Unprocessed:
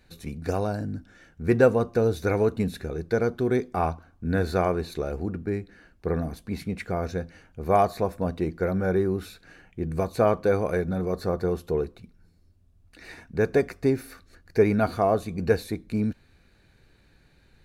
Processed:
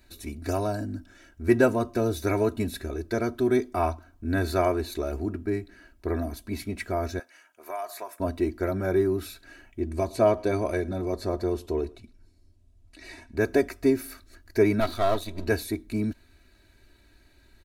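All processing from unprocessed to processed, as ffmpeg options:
-filter_complex "[0:a]asettb=1/sr,asplit=3[a][b][c];[a]atrim=end=7.194[d];[b]atrim=start=7.19:end=8.2,asetpts=PTS-STARTPTS,afade=t=in:d=0.004:c=qsin,afade=t=out:st=1.006:d=0.004:c=qsin,highpass=840,equalizer=f=4.1k:t=o:w=0.65:g=-5.5,acompressor=threshold=-30dB:ratio=5:attack=3.2:release=140:knee=1:detection=peak[e];[c]atrim=start=8.196[f];[d][e]acrossfade=d=0.004:c1=hsin:c2=qsin[g];[g][f]acrossfade=d=0.004:c1=qsin:c2=hsin,asettb=1/sr,asplit=3[h][i][j];[h]atrim=end=9.804[k];[i]atrim=start=9.8:end=13.37,asetpts=PTS-STARTPTS,afade=t=in:d=0.004:c=qsin,afade=t=out:st=3.566:d=0.004:c=qsin,lowpass=9.2k,equalizer=f=1.4k:w=2.3:g=-5,aecho=1:1:110:0.0708,atrim=end_sample=157437[l];[j]atrim=start=13.366[m];[k][l]acrossfade=d=0.004:c1=hsin:c2=qsin[n];[n][m]acrossfade=d=0.004:c1=qsin:c2=hsin,asettb=1/sr,asplit=3[o][p][q];[o]atrim=end=14.804[r];[p]atrim=start=14.8:end=15.47,asetpts=PTS-STARTPTS,afade=t=in:d=0.004:c=qsin,afade=t=out:st=0.666:d=0.004:c=qsin,aeval=exprs='if(lt(val(0),0),0.251*val(0),val(0))':c=same,equalizer=f=3.8k:t=o:w=0.28:g=13.5[s];[q]atrim=start=15.466[t];[r][s]acrossfade=d=0.004:c1=hsin:c2=qsin[u];[u][t]acrossfade=d=0.004:c1=qsin:c2=hsin,highshelf=f=7.6k:g=8.5,aecho=1:1:3.1:0.86,volume=-2dB"

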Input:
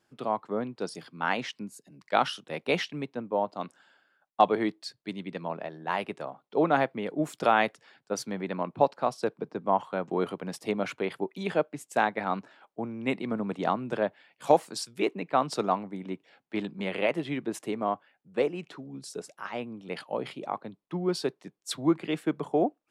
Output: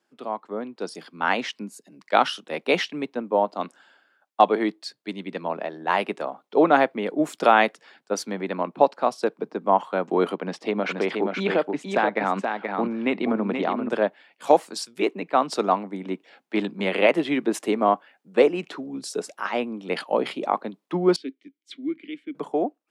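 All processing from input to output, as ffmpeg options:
-filter_complex "[0:a]asettb=1/sr,asplit=3[a][b][c];[a]atrim=end=10.364[d];[b]atrim=start=10.36:end=13.89,asetpts=PTS-STARTPTS,afade=t=in:d=0.004:c=qsin,afade=t=out:st=3.526:d=0.004:c=qsin,lowpass=4.2k,acompressor=threshold=-28dB:ratio=3:attack=3.2:release=140:knee=1:detection=peak,aecho=1:1:477:0.562,atrim=end_sample=155673[e];[c]atrim=start=13.886[f];[d][e]acrossfade=d=0.004:c1=hsin:c2=qsin[g];[g][f]acrossfade=d=0.004:c1=qsin:c2=hsin,asettb=1/sr,asplit=3[h][i][j];[h]atrim=end=21.164[k];[i]atrim=start=21.16:end=22.35,asetpts=PTS-STARTPTS,afade=t=in:d=0.004:c=qsin,afade=t=out:st=1.186:d=0.004:c=qsin,asplit=3[l][m][n];[l]bandpass=f=270:t=q:w=8,volume=0dB[o];[m]bandpass=f=2.29k:t=q:w=8,volume=-6dB[p];[n]bandpass=f=3.01k:t=q:w=8,volume=-9dB[q];[o][p][q]amix=inputs=3:normalize=0,lowshelf=f=250:g=-6[r];[j]atrim=start=22.346[s];[k][r]acrossfade=d=0.004:c1=hsin:c2=qsin[t];[t][s]acrossfade=d=0.004:c1=qsin:c2=hsin,highpass=f=200:w=0.5412,highpass=f=200:w=1.3066,highshelf=f=9.2k:g=-4.5,dynaudnorm=f=290:g=7:m=11.5dB,volume=-1dB"

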